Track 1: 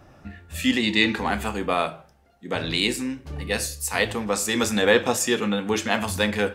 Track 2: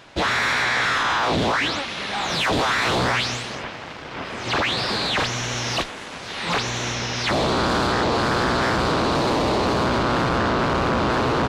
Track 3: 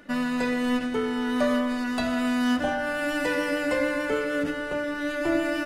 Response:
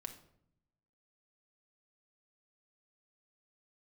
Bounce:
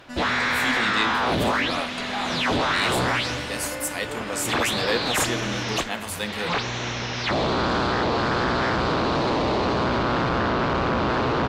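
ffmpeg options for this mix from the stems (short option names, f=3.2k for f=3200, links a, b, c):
-filter_complex "[0:a]aemphasis=mode=production:type=cd,volume=-8dB[a];[1:a]lowpass=5k,volume=-2dB[b];[2:a]equalizer=f=6.6k:w=0.97:g=12,volume=-9.5dB[c];[a][b][c]amix=inputs=3:normalize=0"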